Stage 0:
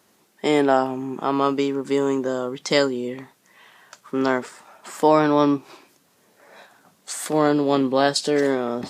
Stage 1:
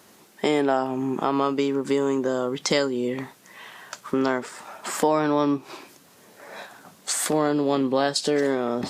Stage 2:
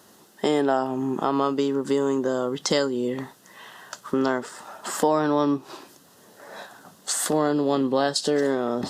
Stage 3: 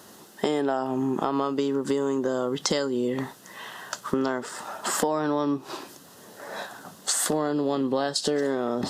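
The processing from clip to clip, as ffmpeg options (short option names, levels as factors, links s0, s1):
-af "acompressor=threshold=0.0282:ratio=2.5,volume=2.37"
-af "equalizer=f=2300:t=o:w=0.21:g=-14.5"
-af "acompressor=threshold=0.0447:ratio=4,volume=1.68"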